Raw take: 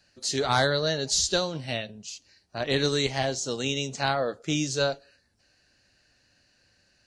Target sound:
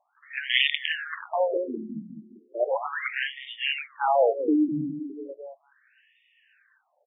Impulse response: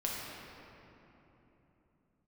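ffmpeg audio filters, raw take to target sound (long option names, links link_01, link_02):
-filter_complex "[0:a]asplit=2[link_01][link_02];[link_02]adelay=206,lowpass=frequency=1300:poles=1,volume=-7dB,asplit=2[link_03][link_04];[link_04]adelay=206,lowpass=frequency=1300:poles=1,volume=0.48,asplit=2[link_05][link_06];[link_06]adelay=206,lowpass=frequency=1300:poles=1,volume=0.48,asplit=2[link_07][link_08];[link_08]adelay=206,lowpass=frequency=1300:poles=1,volume=0.48,asplit=2[link_09][link_10];[link_10]adelay=206,lowpass=frequency=1300:poles=1,volume=0.48,asplit=2[link_11][link_12];[link_12]adelay=206,lowpass=frequency=1300:poles=1,volume=0.48[link_13];[link_01][link_03][link_05][link_07][link_09][link_11][link_13]amix=inputs=7:normalize=0,aeval=exprs='(mod(5.31*val(0)+1,2)-1)/5.31':channel_layout=same,afftfilt=real='re*between(b*sr/1024,230*pow(2600/230,0.5+0.5*sin(2*PI*0.36*pts/sr))/1.41,230*pow(2600/230,0.5+0.5*sin(2*PI*0.36*pts/sr))*1.41)':imag='im*between(b*sr/1024,230*pow(2600/230,0.5+0.5*sin(2*PI*0.36*pts/sr))/1.41,230*pow(2600/230,0.5+0.5*sin(2*PI*0.36*pts/sr))*1.41)':win_size=1024:overlap=0.75,volume=8dB"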